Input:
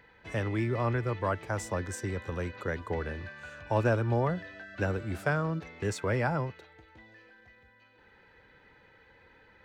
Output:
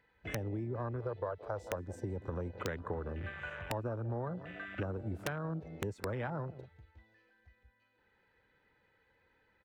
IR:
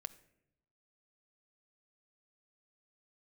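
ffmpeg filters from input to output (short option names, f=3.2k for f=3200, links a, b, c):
-filter_complex "[0:a]asettb=1/sr,asplit=3[a][b][c];[a]atrim=end=1.004[d];[b]atrim=start=1:end=1.76,asetpts=PTS-STARTPTS,afade=t=in:d=0.004:c=qsin,afade=t=out:st=0.756:d=0.004:c=qsin,equalizer=f=250:t=o:w=1:g=-10,equalizer=f=500:t=o:w=1:g=10,equalizer=f=4k:t=o:w=1:g=11,equalizer=f=8k:t=o:w=1:g=-3[e];[c]atrim=start=1.756[f];[d][e]acrossfade=d=0.004:c1=hsin:c2=qsin[g];[g][f]acrossfade=d=0.004:c1=qsin:c2=hsin,asplit=2[h][i];[i]adelay=169.1,volume=-19dB,highshelf=f=4k:g=-3.8[j];[h][j]amix=inputs=2:normalize=0,acompressor=threshold=-38dB:ratio=8,afwtdn=0.00631,aeval=exprs='(mod(26.6*val(0)+1,2)-1)/26.6':c=same,volume=3.5dB"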